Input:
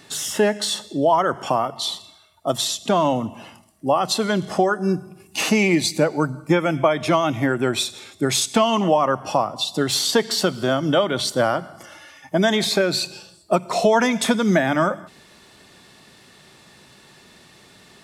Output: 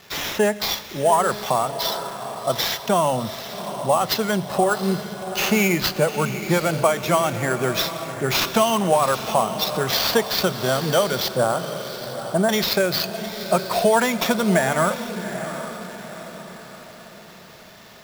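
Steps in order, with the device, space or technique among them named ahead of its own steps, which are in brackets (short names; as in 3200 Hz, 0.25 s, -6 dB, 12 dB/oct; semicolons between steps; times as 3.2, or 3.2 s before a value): 11.28–12.49 LPF 1400 Hz 24 dB/oct; bell 290 Hz -14 dB 0.3 oct; diffused feedback echo 0.765 s, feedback 46%, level -10 dB; early 8-bit sampler (sample-rate reducer 9100 Hz, jitter 0%; bit-crush 8-bit)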